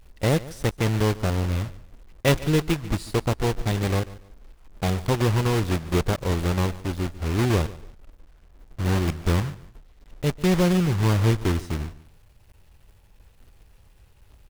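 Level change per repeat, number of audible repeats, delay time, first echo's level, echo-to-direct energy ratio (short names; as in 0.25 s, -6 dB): -11.0 dB, 2, 0.144 s, -18.5 dB, -18.0 dB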